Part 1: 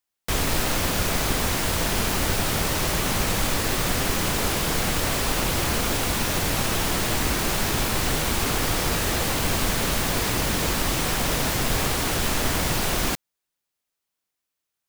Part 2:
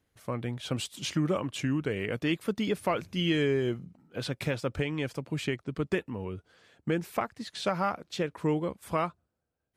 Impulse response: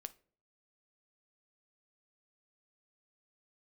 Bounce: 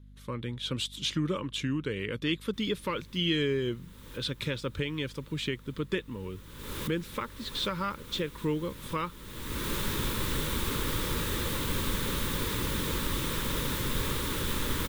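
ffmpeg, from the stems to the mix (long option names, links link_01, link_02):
-filter_complex "[0:a]equalizer=frequency=4400:width=0.61:gain=-9,adelay=2250,volume=-6dB,afade=type=in:start_time=6.54:duration=0.58:silence=0.281838[link_01];[1:a]volume=-2dB,asplit=2[link_02][link_03];[link_03]apad=whole_len=755524[link_04];[link_01][link_04]sidechaincompress=threshold=-45dB:ratio=12:attack=6.1:release=448[link_05];[link_05][link_02]amix=inputs=2:normalize=0,equalizer=frequency=3600:width_type=o:width=0.41:gain=11,aeval=exprs='val(0)+0.00316*(sin(2*PI*50*n/s)+sin(2*PI*2*50*n/s)/2+sin(2*PI*3*50*n/s)/3+sin(2*PI*4*50*n/s)/4+sin(2*PI*5*50*n/s)/5)':channel_layout=same,asuperstop=centerf=710:order=4:qfactor=2.1"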